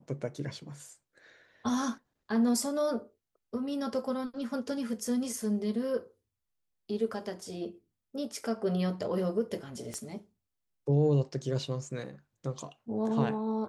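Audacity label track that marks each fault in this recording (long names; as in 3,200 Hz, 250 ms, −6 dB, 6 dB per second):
9.940000	9.940000	click −25 dBFS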